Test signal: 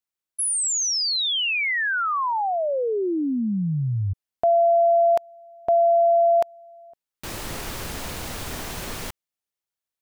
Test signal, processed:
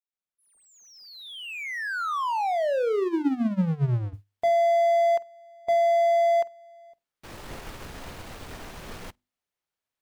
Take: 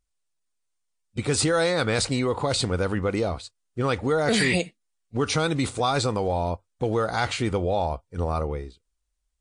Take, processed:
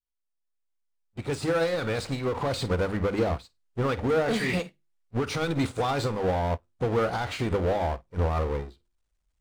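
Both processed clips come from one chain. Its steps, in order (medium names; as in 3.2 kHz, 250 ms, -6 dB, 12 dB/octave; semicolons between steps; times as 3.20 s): fade-in on the opening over 2.62 s; power-law waveshaper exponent 0.5; treble shelf 4.7 kHz -11 dB; flutter echo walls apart 8.3 m, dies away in 0.21 s; peak limiter -15.5 dBFS; hum notches 50/100/150/200/250/300/350 Hz; upward expansion 2.5:1, over -37 dBFS; trim -1.5 dB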